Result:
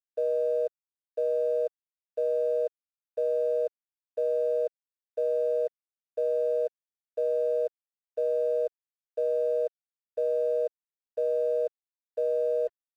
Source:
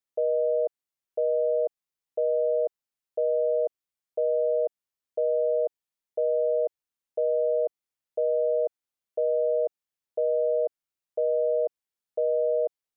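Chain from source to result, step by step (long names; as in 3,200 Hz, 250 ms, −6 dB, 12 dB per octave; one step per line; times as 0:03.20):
flat-topped band-pass 330 Hz, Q 0.8
gate on every frequency bin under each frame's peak −15 dB strong
reversed playback
upward compression, threshold −49 dBFS
reversed playback
dead-zone distortion −55 dBFS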